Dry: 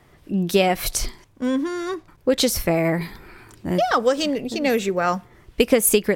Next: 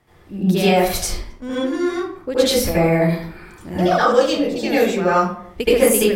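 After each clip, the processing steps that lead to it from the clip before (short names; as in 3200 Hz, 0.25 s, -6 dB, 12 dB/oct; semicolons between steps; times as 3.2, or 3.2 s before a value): reverb RT60 0.60 s, pre-delay 70 ms, DRR -10.5 dB; gain -7.5 dB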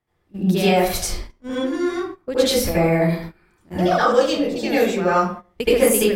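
gate -29 dBFS, range -17 dB; gain -1.5 dB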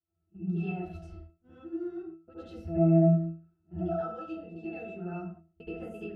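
octave resonator E, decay 0.35 s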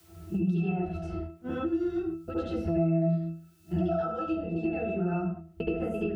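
three-band squash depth 100%; gain +4.5 dB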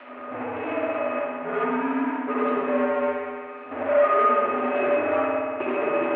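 power-law curve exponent 0.5; spring tank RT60 2.1 s, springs 57 ms, chirp 50 ms, DRR -1 dB; mistuned SSB -82 Hz 490–2500 Hz; gain +4.5 dB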